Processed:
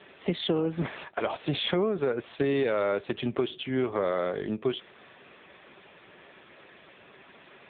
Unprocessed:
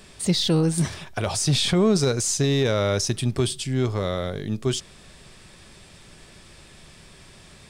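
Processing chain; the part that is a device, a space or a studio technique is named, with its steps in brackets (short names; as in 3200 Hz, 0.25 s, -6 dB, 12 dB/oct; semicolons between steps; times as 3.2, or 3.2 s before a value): voicemail (BPF 330–2800 Hz; compressor 8:1, threshold -27 dBFS, peak gain reduction 9.5 dB; gain +5 dB; AMR-NB 6.7 kbps 8000 Hz)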